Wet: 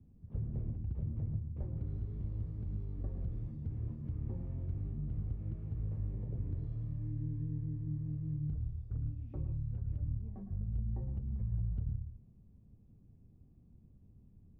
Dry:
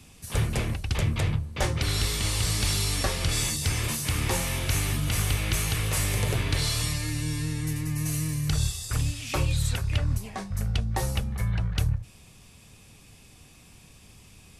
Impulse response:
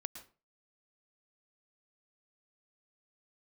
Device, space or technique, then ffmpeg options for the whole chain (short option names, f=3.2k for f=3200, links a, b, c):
television next door: -filter_complex "[0:a]acompressor=threshold=-26dB:ratio=6,lowpass=260[a];[1:a]atrim=start_sample=2205[b];[a][b]afir=irnorm=-1:irlink=0,volume=-3.5dB"